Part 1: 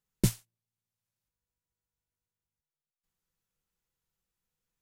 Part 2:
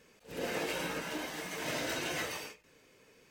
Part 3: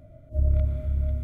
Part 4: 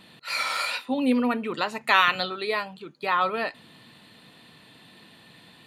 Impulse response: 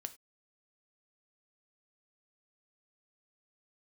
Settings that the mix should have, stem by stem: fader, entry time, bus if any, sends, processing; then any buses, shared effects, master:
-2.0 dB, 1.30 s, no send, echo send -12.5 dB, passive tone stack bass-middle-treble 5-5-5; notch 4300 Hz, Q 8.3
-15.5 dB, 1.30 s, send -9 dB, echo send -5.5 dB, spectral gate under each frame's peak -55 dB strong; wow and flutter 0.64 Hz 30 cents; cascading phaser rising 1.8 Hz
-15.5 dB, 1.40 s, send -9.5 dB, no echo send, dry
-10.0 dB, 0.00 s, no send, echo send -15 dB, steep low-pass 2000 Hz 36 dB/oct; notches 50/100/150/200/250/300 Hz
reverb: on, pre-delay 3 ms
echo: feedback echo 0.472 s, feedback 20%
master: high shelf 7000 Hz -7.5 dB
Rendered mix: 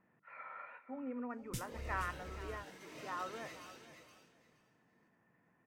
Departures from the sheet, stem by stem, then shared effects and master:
stem 3 -15.5 dB -> -26.0 dB; stem 4 -10.0 dB -> -18.5 dB

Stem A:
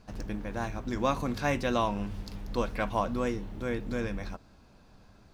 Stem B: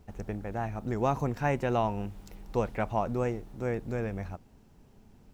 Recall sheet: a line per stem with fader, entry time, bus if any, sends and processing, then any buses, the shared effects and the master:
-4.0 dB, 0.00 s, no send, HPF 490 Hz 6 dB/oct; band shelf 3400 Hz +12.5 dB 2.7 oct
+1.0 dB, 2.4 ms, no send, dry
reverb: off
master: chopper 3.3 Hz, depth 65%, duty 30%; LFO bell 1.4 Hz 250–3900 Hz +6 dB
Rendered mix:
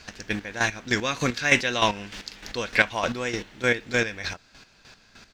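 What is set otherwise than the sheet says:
stem A -4.0 dB -> +7.5 dB; master: missing LFO bell 1.4 Hz 250–3900 Hz +6 dB

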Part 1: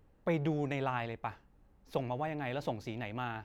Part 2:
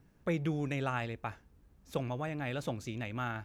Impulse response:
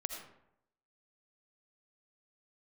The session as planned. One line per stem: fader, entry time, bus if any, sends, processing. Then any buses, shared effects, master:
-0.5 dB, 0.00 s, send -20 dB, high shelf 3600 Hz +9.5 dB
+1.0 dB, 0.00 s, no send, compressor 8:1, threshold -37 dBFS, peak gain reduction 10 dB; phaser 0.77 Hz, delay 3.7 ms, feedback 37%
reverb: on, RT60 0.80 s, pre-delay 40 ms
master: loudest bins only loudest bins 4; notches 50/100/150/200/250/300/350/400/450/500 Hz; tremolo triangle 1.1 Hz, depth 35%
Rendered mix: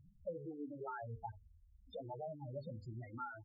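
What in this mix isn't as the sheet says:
stem 1 -0.5 dB -> -11.0 dB; stem 2: polarity flipped

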